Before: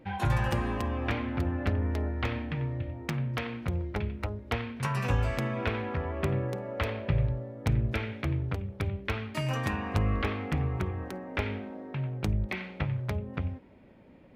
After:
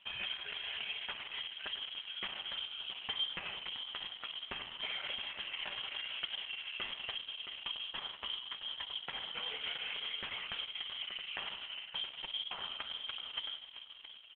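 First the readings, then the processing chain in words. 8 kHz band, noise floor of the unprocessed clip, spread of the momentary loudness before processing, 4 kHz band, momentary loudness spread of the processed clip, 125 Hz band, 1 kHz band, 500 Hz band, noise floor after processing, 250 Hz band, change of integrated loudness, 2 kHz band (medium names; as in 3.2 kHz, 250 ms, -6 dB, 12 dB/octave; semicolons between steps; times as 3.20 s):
under -30 dB, -54 dBFS, 6 LU, +10.0 dB, 3 LU, -37.5 dB, -12.5 dB, -21.0 dB, -53 dBFS, -28.5 dB, -7.5 dB, -5.5 dB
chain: hum notches 50/100/150/200/250/300/350/400 Hz; compression 16:1, threshold -33 dBFS, peak gain reduction 11.5 dB; feedback comb 100 Hz, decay 0.16 s, harmonics odd, mix 60%; flange 1.4 Hz, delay 5.1 ms, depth 1.2 ms, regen +30%; vibrato 0.91 Hz 8.4 cents; feedback delay 670 ms, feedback 20%, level -9.5 dB; Schroeder reverb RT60 1.9 s, combs from 29 ms, DRR 7 dB; frequency inversion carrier 3.3 kHz; trim +8 dB; Opus 8 kbps 48 kHz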